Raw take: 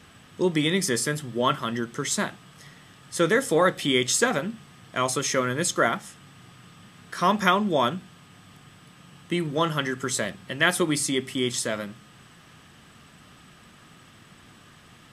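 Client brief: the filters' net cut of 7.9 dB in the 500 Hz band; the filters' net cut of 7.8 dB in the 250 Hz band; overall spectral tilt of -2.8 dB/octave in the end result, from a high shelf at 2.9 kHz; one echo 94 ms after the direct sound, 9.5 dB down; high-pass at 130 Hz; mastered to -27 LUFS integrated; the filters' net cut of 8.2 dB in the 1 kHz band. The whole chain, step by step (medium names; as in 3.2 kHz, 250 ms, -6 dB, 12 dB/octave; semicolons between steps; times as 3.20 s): high-pass 130 Hz; peaking EQ 250 Hz -8 dB; peaking EQ 500 Hz -5 dB; peaking EQ 1 kHz -8.5 dB; treble shelf 2.9 kHz -4.5 dB; delay 94 ms -9.5 dB; trim +3 dB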